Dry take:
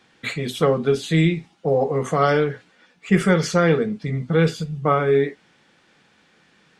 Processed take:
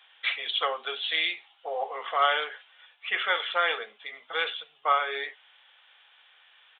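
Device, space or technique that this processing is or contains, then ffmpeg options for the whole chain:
musical greeting card: -af "aresample=8000,aresample=44100,highpass=f=720:w=0.5412,highpass=f=720:w=1.3066,equalizer=f=3200:t=o:w=0.51:g=10,volume=0.794"

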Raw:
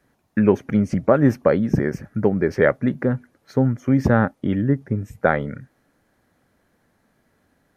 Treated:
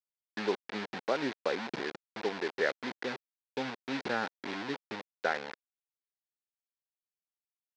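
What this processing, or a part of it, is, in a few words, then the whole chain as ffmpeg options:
hand-held game console: -af "acrusher=bits=3:mix=0:aa=0.000001,highpass=480,equalizer=f=590:t=q:w=4:g=-7,equalizer=f=1200:t=q:w=4:g=-6,equalizer=f=3000:t=q:w=4:g=-4,lowpass=f=4500:w=0.5412,lowpass=f=4500:w=1.3066,volume=0.376"

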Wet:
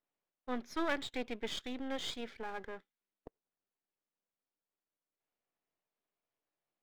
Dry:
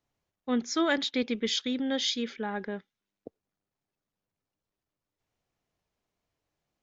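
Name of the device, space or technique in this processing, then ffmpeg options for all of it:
crystal radio: -af "highpass=270,lowpass=3300,aeval=exprs='if(lt(val(0),0),0.251*val(0),val(0))':c=same,volume=0.631"

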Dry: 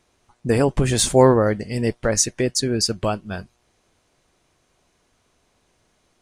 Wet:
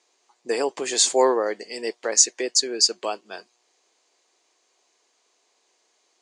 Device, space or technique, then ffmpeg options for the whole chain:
phone speaker on a table: -af "highpass=f=380:w=0.5412,highpass=f=380:w=1.3066,equalizer=f=580:t=q:w=4:g=-5,equalizer=f=1400:t=q:w=4:g=-6,equalizer=f=4600:t=q:w=4:g=6,equalizer=f=7000:t=q:w=4:g=8,lowpass=f=8300:w=0.5412,lowpass=f=8300:w=1.3066,volume=0.841"

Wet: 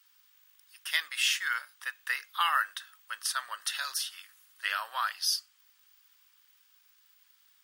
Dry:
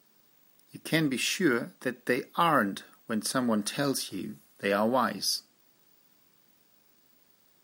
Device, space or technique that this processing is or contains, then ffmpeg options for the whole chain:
headphones lying on a table: -af "highpass=f=1300:w=0.5412,highpass=f=1300:w=1.3066,equalizer=f=840:t=o:w=1.3:g=5,equalizer=f=3100:t=o:w=0.42:g=5"

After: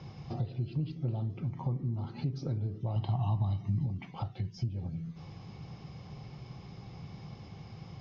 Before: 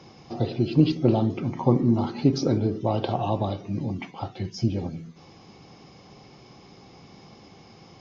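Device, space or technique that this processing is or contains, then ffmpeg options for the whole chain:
jukebox: -filter_complex "[0:a]lowpass=5000,lowshelf=f=190:t=q:w=1.5:g=10,acompressor=threshold=0.0282:ratio=4,asettb=1/sr,asplit=3[s0][s1][s2];[s0]atrim=end=2.964[s3];[s1]atrim=start=2.96:end=3.86,asetpts=PTS-STARTPTS,afade=t=in:d=0.004:c=qsin,afade=t=out:st=0.896:d=0.004:c=qsin,aecho=1:1:1:0.8,atrim=end_sample=39690[s4];[s2]atrim=start=3.856[s5];[s3][s4]acrossfade=d=0.004:c1=hsin:c2=qsin[s6];[s6][s5]acrossfade=d=0.004:c1=qsin:c2=hsin,volume=0.708"

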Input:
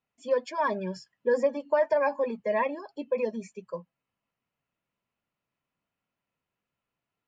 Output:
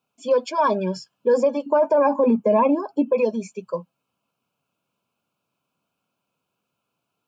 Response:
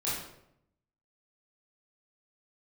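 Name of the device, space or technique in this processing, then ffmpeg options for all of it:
PA system with an anti-feedback notch: -filter_complex "[0:a]asettb=1/sr,asplit=3[s0][s1][s2];[s0]atrim=end=1.664[s3];[s1]atrim=start=1.66:end=3.13,asetpts=PTS-STARTPTS,afade=t=in:d=0.004:c=qsin,afade=t=out:st=1.466:d=0.004:c=qsin,equalizer=f=250:t=o:w=1:g=11,equalizer=f=1000:t=o:w=1:g=4,equalizer=f=4000:t=o:w=1:g=-10[s4];[s2]atrim=start=3.126[s5];[s3][s4]acrossfade=d=0.004:c1=hsin:c2=qsin[s6];[s6][s5]acrossfade=d=0.004:c1=qsin:c2=hsin,highpass=120,asuperstop=centerf=1900:order=4:qfactor=2.6,alimiter=limit=0.106:level=0:latency=1:release=21,volume=2.82"

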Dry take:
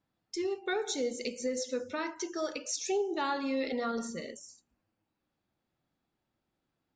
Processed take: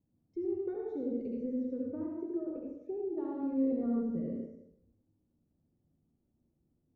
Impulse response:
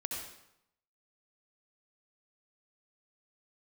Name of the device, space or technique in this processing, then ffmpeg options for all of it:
television next door: -filter_complex "[0:a]acompressor=threshold=0.0178:ratio=6,lowpass=300[s0];[1:a]atrim=start_sample=2205[s1];[s0][s1]afir=irnorm=-1:irlink=0,asettb=1/sr,asplit=3[s2][s3][s4];[s2]atrim=end=1.904[s5];[s3]atrim=start=1.9:end=3.18,asetpts=PTS-STARTPTS,afade=t=in:d=0.004:c=qsin,afade=t=out:st=1.276:d=0.004:c=qsin,equalizer=f=4300:t=o:w=2.1:g=-12.5[s6];[s4]atrim=start=3.176[s7];[s5][s6]acrossfade=d=0.004:c1=hsin:c2=qsin[s8];[s8][s7]acrossfade=d=0.004:c1=qsin:c2=hsin,volume=2.51"

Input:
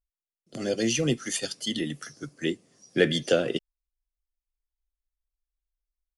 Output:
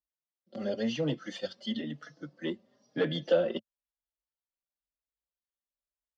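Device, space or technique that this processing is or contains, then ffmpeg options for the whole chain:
barber-pole flanger into a guitar amplifier: -filter_complex "[0:a]asplit=2[s0][s1];[s1]adelay=4.3,afreqshift=1[s2];[s0][s2]amix=inputs=2:normalize=1,asoftclip=type=tanh:threshold=0.126,highpass=96,equalizer=f=110:t=q:w=4:g=-7,equalizer=f=220:t=q:w=4:g=4,equalizer=f=400:t=q:w=4:g=-4,equalizer=f=570:t=q:w=4:g=9,equalizer=f=880:t=q:w=4:g=4,equalizer=f=2400:t=q:w=4:g=-8,lowpass=f=4100:w=0.5412,lowpass=f=4100:w=1.3066,volume=0.75"

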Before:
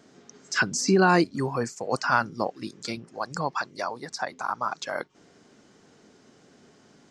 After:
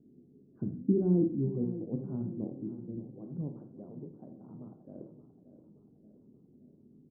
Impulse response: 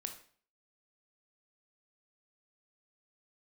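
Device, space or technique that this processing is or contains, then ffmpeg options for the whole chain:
next room: -filter_complex "[0:a]lowpass=f=330:w=0.5412,lowpass=f=330:w=1.3066[s0];[1:a]atrim=start_sample=2205[s1];[s0][s1]afir=irnorm=-1:irlink=0,aecho=1:1:576|1152|1728|2304|2880:0.224|0.114|0.0582|0.0297|0.0151,volume=1.19"

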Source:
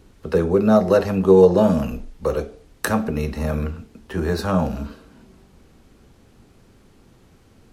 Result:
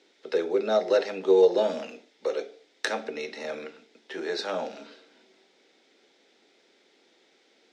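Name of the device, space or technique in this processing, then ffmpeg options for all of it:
phone speaker on a table: -af "highpass=f=340:w=0.5412,highpass=f=340:w=1.3066,equalizer=f=1100:t=q:w=4:g=-10,equalizer=f=2100:t=q:w=4:g=8,equalizer=f=3600:t=q:w=4:g=10,equalizer=f=5200:t=q:w=4:g=5,lowpass=f=7200:w=0.5412,lowpass=f=7200:w=1.3066,volume=0.531"

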